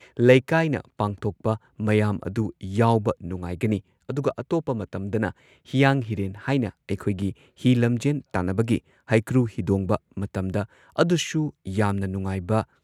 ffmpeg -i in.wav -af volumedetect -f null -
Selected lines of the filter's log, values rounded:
mean_volume: -24.0 dB
max_volume: -2.2 dB